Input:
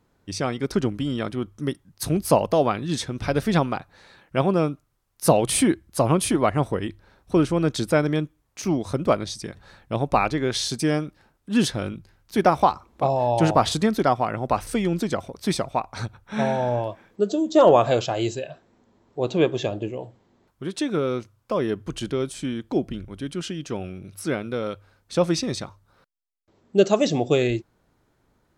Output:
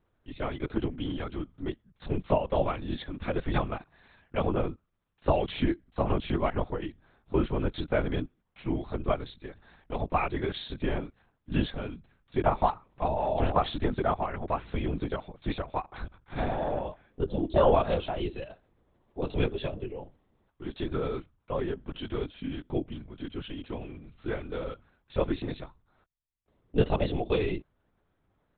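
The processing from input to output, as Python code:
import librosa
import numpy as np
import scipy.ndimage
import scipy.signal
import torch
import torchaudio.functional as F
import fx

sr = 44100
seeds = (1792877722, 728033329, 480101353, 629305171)

y = fx.lpc_vocoder(x, sr, seeds[0], excitation='whisper', order=10)
y = y * 10.0 ** (-7.0 / 20.0)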